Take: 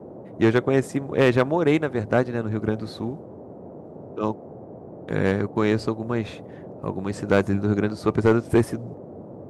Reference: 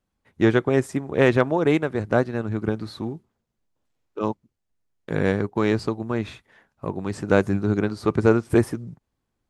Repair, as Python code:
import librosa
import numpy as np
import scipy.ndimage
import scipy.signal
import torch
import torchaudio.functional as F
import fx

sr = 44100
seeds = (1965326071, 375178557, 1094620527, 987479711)

y = fx.fix_declip(x, sr, threshold_db=-9.5)
y = fx.noise_reduce(y, sr, print_start_s=3.45, print_end_s=3.95, reduce_db=30.0)